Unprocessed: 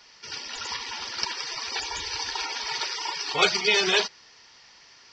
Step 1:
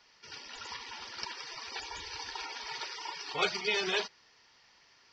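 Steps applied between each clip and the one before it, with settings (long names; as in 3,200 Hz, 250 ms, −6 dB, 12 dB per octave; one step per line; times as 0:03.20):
high-shelf EQ 6,600 Hz −10.5 dB
level −8 dB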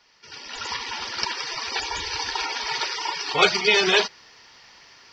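automatic gain control gain up to 10 dB
level +3 dB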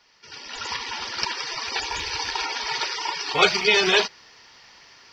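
loose part that buzzes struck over −43 dBFS, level −21 dBFS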